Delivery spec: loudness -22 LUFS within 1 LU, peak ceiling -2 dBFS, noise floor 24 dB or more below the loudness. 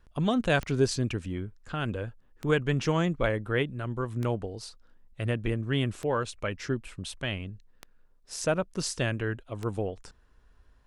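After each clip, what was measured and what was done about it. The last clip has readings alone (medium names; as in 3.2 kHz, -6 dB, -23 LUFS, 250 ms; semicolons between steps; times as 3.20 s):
clicks found 6; loudness -30.5 LUFS; peak level -11.5 dBFS; loudness target -22.0 LUFS
-> de-click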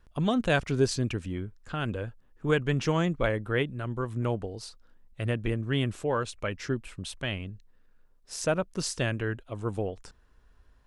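clicks found 0; loudness -30.5 LUFS; peak level -11.5 dBFS; loudness target -22.0 LUFS
-> trim +8.5 dB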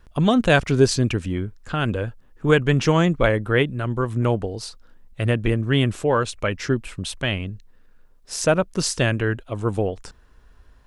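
loudness -22.0 LUFS; peak level -3.0 dBFS; noise floor -52 dBFS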